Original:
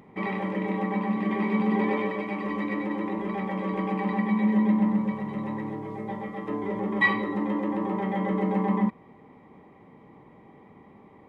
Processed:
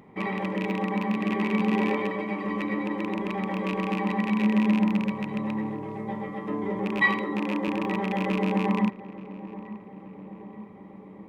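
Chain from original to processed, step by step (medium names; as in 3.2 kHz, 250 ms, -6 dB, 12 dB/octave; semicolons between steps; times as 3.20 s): rattle on loud lows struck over -29 dBFS, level -22 dBFS; 7.03–7.68 s: high-pass 140 Hz; filtered feedback delay 879 ms, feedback 70%, low-pass 1.4 kHz, level -15.5 dB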